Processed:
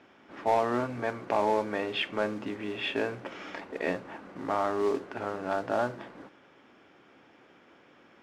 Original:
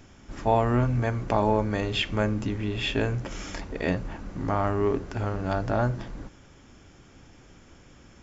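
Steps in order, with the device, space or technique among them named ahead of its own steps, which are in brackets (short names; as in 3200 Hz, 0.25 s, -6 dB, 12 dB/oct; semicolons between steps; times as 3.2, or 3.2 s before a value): carbon microphone (BPF 330–3100 Hz; soft clip -15 dBFS, distortion -18 dB; modulation noise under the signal 19 dB); LPF 5100 Hz 12 dB/oct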